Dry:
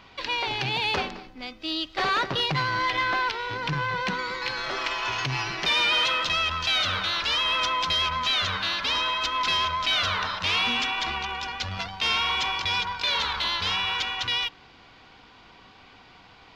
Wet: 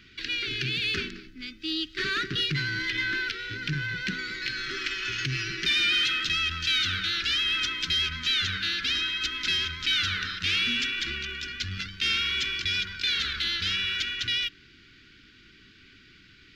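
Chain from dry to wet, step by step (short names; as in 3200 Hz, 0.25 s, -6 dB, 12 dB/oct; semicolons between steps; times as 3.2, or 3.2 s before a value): elliptic band-stop 370–1500 Hz, stop band 80 dB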